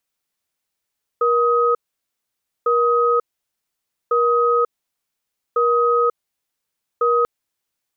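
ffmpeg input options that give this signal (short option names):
-f lavfi -i "aevalsrc='0.15*(sin(2*PI*475*t)+sin(2*PI*1260*t))*clip(min(mod(t,1.45),0.54-mod(t,1.45))/0.005,0,1)':d=6.04:s=44100"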